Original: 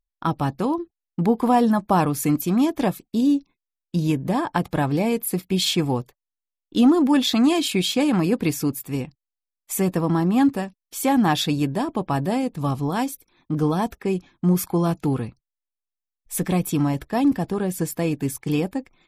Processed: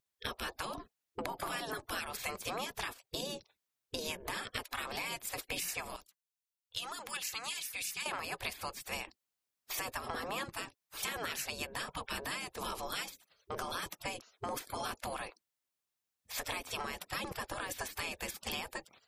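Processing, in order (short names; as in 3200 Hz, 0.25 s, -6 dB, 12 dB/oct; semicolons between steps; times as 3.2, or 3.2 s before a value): spectral gate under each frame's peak -20 dB weak; 5.96–8.06 passive tone stack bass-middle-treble 5-5-5; compressor 6:1, threshold -43 dBFS, peak gain reduction 13.5 dB; gain +7 dB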